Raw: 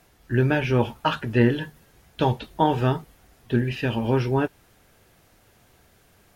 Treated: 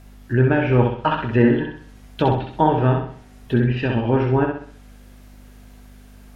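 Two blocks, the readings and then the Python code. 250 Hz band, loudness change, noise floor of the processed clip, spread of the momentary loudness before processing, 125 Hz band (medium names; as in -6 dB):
+4.5 dB, +4.0 dB, -45 dBFS, 6 LU, +4.5 dB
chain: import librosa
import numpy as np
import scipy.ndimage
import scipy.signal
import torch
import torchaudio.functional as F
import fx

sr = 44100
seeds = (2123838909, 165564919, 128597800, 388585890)

p1 = fx.env_lowpass_down(x, sr, base_hz=2000.0, full_db=-21.0)
p2 = fx.add_hum(p1, sr, base_hz=50, snr_db=23)
p3 = p2 + fx.echo_feedback(p2, sr, ms=64, feedback_pct=41, wet_db=-4.0, dry=0)
y = p3 * librosa.db_to_amplitude(3.0)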